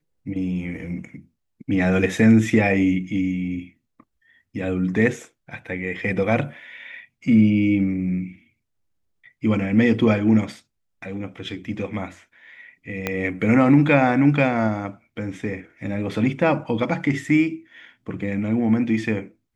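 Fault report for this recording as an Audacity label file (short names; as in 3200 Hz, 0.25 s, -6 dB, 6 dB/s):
13.070000	13.070000	pop -9 dBFS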